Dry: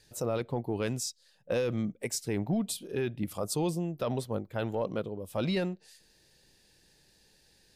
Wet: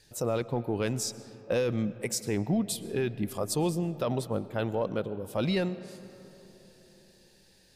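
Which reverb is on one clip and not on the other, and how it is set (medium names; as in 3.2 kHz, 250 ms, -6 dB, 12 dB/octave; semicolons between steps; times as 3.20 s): algorithmic reverb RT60 3.9 s, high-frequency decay 0.35×, pre-delay 80 ms, DRR 15.5 dB; trim +2 dB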